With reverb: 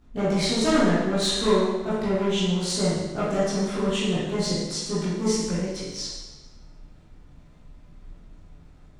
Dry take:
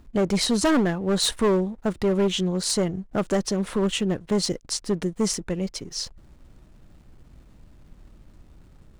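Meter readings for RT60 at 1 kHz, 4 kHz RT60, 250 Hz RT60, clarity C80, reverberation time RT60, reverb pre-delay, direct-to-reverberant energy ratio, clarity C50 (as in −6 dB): 1.2 s, 1.1 s, 1.2 s, 2.0 dB, 1.2 s, 14 ms, −12.0 dB, −2.0 dB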